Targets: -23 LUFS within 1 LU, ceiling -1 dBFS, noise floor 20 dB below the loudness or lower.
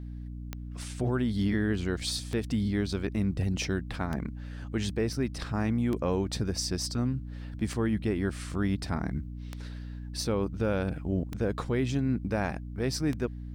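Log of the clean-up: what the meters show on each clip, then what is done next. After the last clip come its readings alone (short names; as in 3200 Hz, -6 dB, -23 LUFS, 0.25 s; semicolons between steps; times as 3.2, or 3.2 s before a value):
clicks 8; hum 60 Hz; harmonics up to 300 Hz; hum level -37 dBFS; loudness -31.0 LUFS; peak -17.0 dBFS; loudness target -23.0 LUFS
-> de-click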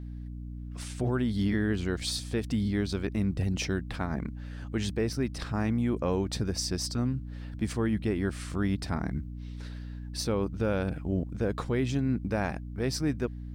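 clicks 0; hum 60 Hz; harmonics up to 300 Hz; hum level -37 dBFS
-> de-hum 60 Hz, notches 5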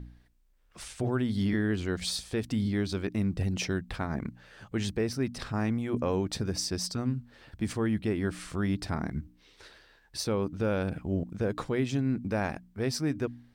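hum none; loudness -31.5 LUFS; peak -17.5 dBFS; loudness target -23.0 LUFS
-> gain +8.5 dB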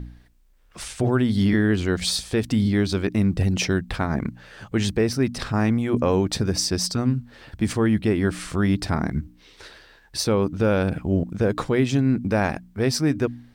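loudness -23.0 LUFS; peak -9.0 dBFS; noise floor -54 dBFS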